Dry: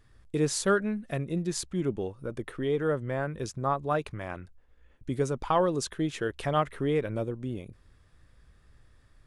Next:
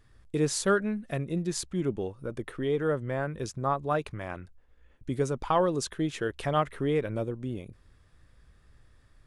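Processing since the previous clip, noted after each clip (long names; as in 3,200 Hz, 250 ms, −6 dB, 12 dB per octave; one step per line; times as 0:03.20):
no processing that can be heard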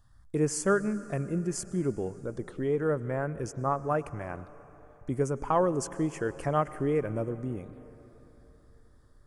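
phaser swept by the level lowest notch 360 Hz, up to 3,800 Hz, full sweep at −31.5 dBFS
on a send at −16 dB: convolution reverb RT60 3.9 s, pre-delay 93 ms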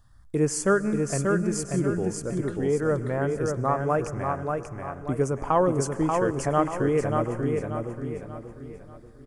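repeating echo 586 ms, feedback 38%, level −4 dB
level +3.5 dB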